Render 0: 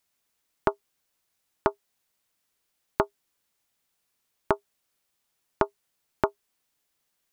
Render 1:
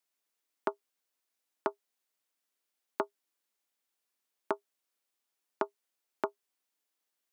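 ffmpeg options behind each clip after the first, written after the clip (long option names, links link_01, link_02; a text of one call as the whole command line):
ffmpeg -i in.wav -af "highpass=frequency=230:width=0.5412,highpass=frequency=230:width=1.3066,volume=-8dB" out.wav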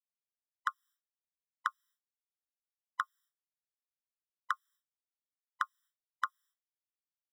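ffmpeg -i in.wav -af "agate=range=-33dB:threshold=-60dB:ratio=3:detection=peak,afftfilt=real='re*eq(mod(floor(b*sr/1024/1000),2),1)':imag='im*eq(mod(floor(b*sr/1024/1000),2),1)':win_size=1024:overlap=0.75,volume=6.5dB" out.wav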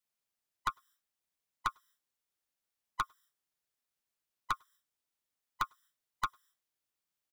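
ffmpeg -i in.wav -filter_complex "[0:a]aeval=exprs='(tanh(35.5*val(0)+0.3)-tanh(0.3))/35.5':channel_layout=same,asplit=2[link_01][link_02];[link_02]adelay=100,highpass=300,lowpass=3400,asoftclip=type=hard:threshold=-38.5dB,volume=-30dB[link_03];[link_01][link_03]amix=inputs=2:normalize=0,volume=7.5dB" out.wav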